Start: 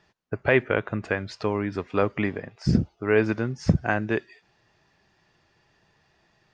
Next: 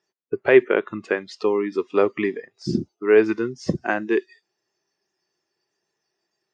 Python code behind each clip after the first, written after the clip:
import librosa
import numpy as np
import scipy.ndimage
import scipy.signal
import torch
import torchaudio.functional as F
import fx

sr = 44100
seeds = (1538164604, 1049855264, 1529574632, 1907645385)

y = scipy.signal.sosfilt(scipy.signal.bessel(2, 260.0, 'highpass', norm='mag', fs=sr, output='sos'), x)
y = fx.noise_reduce_blind(y, sr, reduce_db=17)
y = fx.peak_eq(y, sr, hz=380.0, db=10.0, octaves=0.49)
y = y * 10.0 ** (1.5 / 20.0)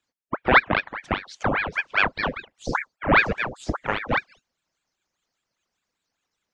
y = fx.ring_lfo(x, sr, carrier_hz=1100.0, swing_pct=90, hz=5.0)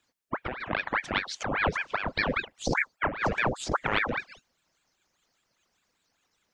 y = fx.over_compress(x, sr, threshold_db=-29.0, ratio=-1.0)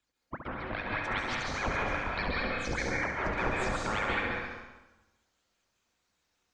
y = fx.octave_divider(x, sr, octaves=2, level_db=2.0)
y = fx.echo_feedback(y, sr, ms=68, feedback_pct=56, wet_db=-7.0)
y = fx.rev_plate(y, sr, seeds[0], rt60_s=1.1, hf_ratio=0.75, predelay_ms=120, drr_db=-3.5)
y = y * 10.0 ** (-9.0 / 20.0)